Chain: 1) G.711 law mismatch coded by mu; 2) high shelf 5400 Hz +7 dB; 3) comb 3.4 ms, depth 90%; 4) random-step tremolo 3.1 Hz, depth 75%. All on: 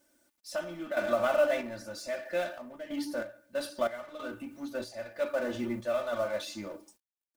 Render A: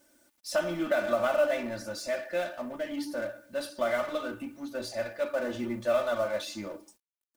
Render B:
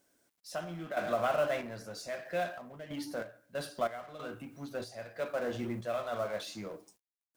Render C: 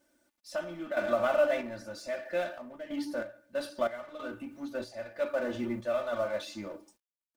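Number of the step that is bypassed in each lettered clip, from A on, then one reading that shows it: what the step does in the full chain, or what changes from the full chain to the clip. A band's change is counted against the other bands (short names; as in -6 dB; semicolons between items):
4, loudness change +2.0 LU; 3, 125 Hz band +7.5 dB; 2, 8 kHz band -4.5 dB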